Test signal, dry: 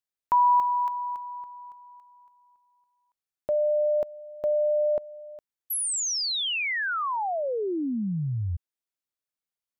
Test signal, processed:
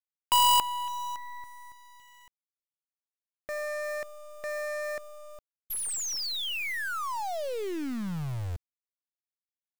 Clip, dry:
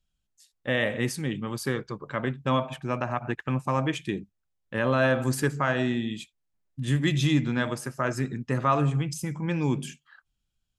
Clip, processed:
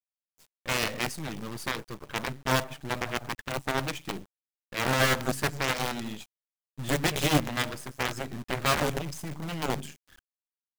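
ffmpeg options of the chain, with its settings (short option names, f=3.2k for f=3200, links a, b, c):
-af "acrusher=bits=6:dc=4:mix=0:aa=0.000001,aeval=exprs='0.316*(cos(1*acos(clip(val(0)/0.316,-1,1)))-cos(1*PI/2))+0.0224*(cos(3*acos(clip(val(0)/0.316,-1,1)))-cos(3*PI/2))+0.0251*(cos(4*acos(clip(val(0)/0.316,-1,1)))-cos(4*PI/2))+0.0794*(cos(7*acos(clip(val(0)/0.316,-1,1)))-cos(7*PI/2))':c=same"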